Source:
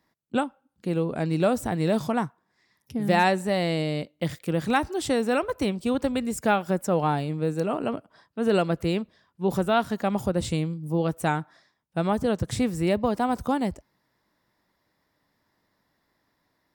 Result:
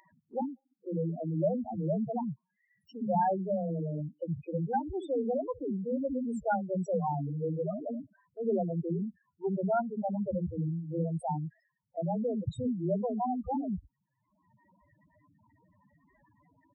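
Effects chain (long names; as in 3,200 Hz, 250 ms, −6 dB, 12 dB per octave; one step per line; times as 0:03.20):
multiband delay without the direct sound highs, lows 60 ms, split 300 Hz
spectral peaks only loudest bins 4
upward compression, threshold −46 dBFS
level −3.5 dB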